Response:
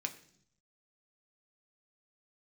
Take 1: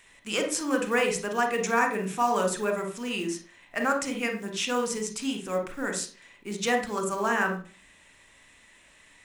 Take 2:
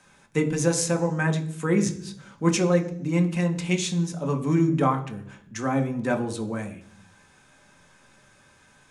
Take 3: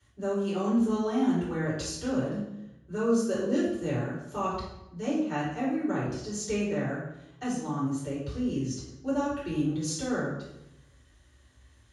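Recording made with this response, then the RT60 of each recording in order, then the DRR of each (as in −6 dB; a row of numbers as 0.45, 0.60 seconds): 2; 0.45, 0.65, 0.90 seconds; 4.5, 3.5, −12.0 decibels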